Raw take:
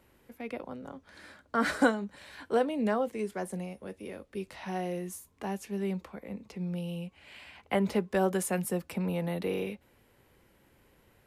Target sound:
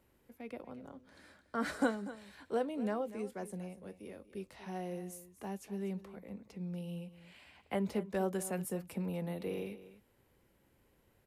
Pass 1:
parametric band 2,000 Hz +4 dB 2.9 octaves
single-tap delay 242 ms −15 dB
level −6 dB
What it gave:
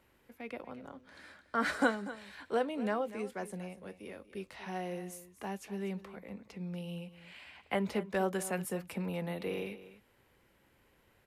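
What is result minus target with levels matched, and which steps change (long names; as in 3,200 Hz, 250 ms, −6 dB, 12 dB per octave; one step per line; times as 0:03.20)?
2,000 Hz band +5.0 dB
change: parametric band 2,000 Hz −3.5 dB 2.9 octaves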